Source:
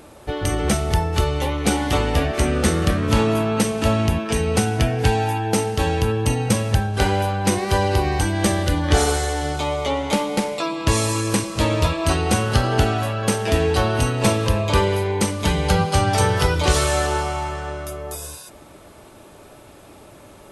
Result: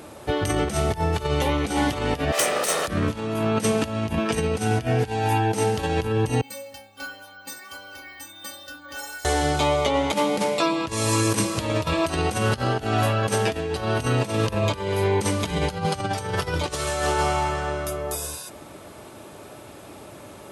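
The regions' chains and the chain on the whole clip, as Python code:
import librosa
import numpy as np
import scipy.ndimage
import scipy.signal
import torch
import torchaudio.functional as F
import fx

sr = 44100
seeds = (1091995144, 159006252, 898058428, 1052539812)

y = fx.chain(x, sr, fx.lower_of_two(delay_ms=1.6),
    fx.highpass(hz=430.0, slope=12),
    fx.high_shelf(hz=4600.0, db=7.5), at=(2.32, 2.88))
y = fx.chain(y, sr, fx.low_shelf(hz=420.0, db=-10.5),
    fx.stiff_resonator(f0_hz=270.0, decay_s=0.46, stiffness=0.008),
    fx.resample_bad(factor=2, down='none', up='hold'), at=(6.41, 9.25))
y = fx.chain(y, sr, fx.high_shelf(hz=11000.0, db=5.0),
    fx.hum_notches(base_hz=50, count=7), at=(11.23, 12.5))
y = fx.over_compress(y, sr, threshold_db=-22.0, ratio=-0.5)
y = scipy.signal.sosfilt(scipy.signal.butter(2, 79.0, 'highpass', fs=sr, output='sos'), y)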